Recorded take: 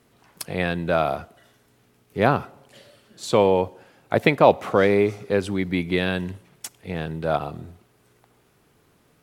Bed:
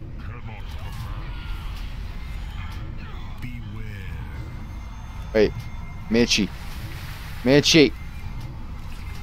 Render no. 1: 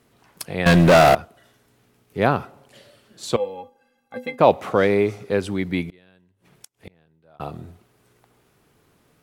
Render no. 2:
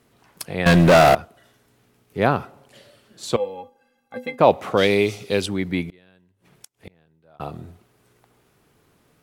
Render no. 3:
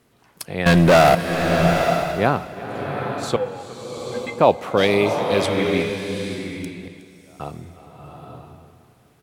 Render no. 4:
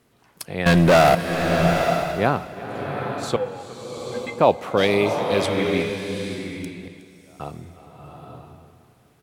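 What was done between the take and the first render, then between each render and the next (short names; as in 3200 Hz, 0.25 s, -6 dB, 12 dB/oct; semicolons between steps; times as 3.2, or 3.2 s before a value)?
0.66–1.15 sample leveller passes 5; 3.36–4.39 metallic resonator 240 Hz, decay 0.23 s, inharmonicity 0.03; 5.85–7.4 flipped gate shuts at -25 dBFS, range -31 dB
4.77–5.46 resonant high shelf 2200 Hz +9.5 dB, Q 1.5
feedback echo 0.366 s, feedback 46%, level -19 dB; bloom reverb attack 0.86 s, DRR 3.5 dB
gain -1.5 dB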